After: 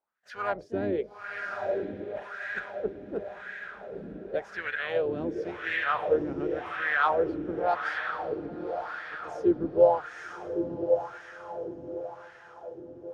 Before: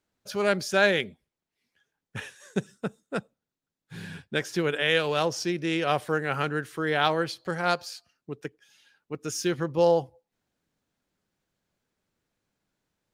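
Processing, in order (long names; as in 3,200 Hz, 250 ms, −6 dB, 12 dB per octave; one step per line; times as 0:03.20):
sub-octave generator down 2 octaves, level +3 dB
parametric band 260 Hz −3 dB 0.33 octaves
feedback delay with all-pass diffusion 965 ms, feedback 56%, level −4.5 dB
pitch-shifted copies added +3 semitones −10 dB
LFO wah 0.91 Hz 280–1,800 Hz, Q 4.4
level +5.5 dB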